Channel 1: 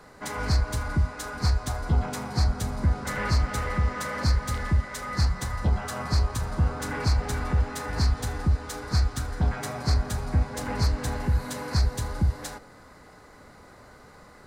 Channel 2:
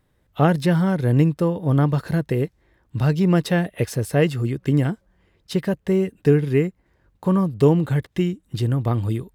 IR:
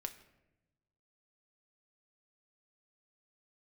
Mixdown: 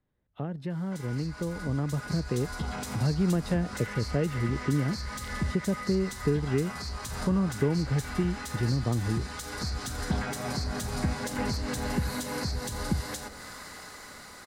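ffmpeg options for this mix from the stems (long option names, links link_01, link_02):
-filter_complex "[0:a]tiltshelf=frequency=1300:gain=-9,bandreject=frequency=2400:width=26,alimiter=level_in=1dB:limit=-24dB:level=0:latency=1:release=139,volume=-1dB,adelay=700,volume=0.5dB,asplit=2[link_01][link_02];[link_02]volume=-8.5dB[link_03];[1:a]aemphasis=mode=reproduction:type=50fm,volume=-14.5dB,asplit=3[link_04][link_05][link_06];[link_05]volume=-19.5dB[link_07];[link_06]apad=whole_len=668661[link_08];[link_01][link_08]sidechaincompress=threshold=-49dB:ratio=8:attack=16:release=552[link_09];[2:a]atrim=start_sample=2205[link_10];[link_03][link_07]amix=inputs=2:normalize=0[link_11];[link_11][link_10]afir=irnorm=-1:irlink=0[link_12];[link_09][link_04][link_12]amix=inputs=3:normalize=0,acrossover=split=94|630[link_13][link_14][link_15];[link_13]acompressor=threshold=-45dB:ratio=4[link_16];[link_14]acompressor=threshold=-33dB:ratio=4[link_17];[link_15]acompressor=threshold=-46dB:ratio=4[link_18];[link_16][link_17][link_18]amix=inputs=3:normalize=0,equalizer=frequency=220:width=2.1:gain=3,dynaudnorm=framelen=320:gausssize=11:maxgain=8dB"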